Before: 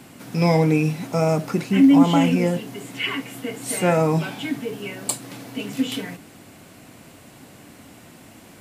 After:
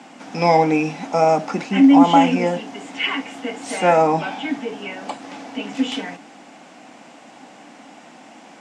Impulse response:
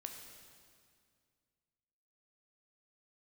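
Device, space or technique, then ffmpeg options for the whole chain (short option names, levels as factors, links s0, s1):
television speaker: -filter_complex "[0:a]asettb=1/sr,asplit=3[s0][s1][s2];[s0]atrim=end=4.074[s3];[s1]atrim=start=4.07:end=5.75,asetpts=PTS-STARTPTS,afade=t=in:d=0.004:c=qsin,afade=t=out:st=1.676:d=0.004:c=qsin,acrossover=split=3300[s4][s5];[s5]acompressor=threshold=0.00708:ratio=4:attack=1:release=60[s6];[s4][s6]amix=inputs=2:normalize=0[s7];[s2]atrim=start=5.746[s8];[s3][s7]acrossfade=d=0.004:c1=hsin:c2=qsin[s9];[s9][s8]acrossfade=d=0.004:c1=qsin:c2=hsin,highpass=f=220:w=0.5412,highpass=f=220:w=1.3066,equalizer=f=390:t=q:w=4:g=-7,equalizer=f=800:t=q:w=4:g=9,equalizer=f=4200:t=q:w=4:g=-5,lowpass=f=6800:w=0.5412,lowpass=f=6800:w=1.3066,volume=1.5"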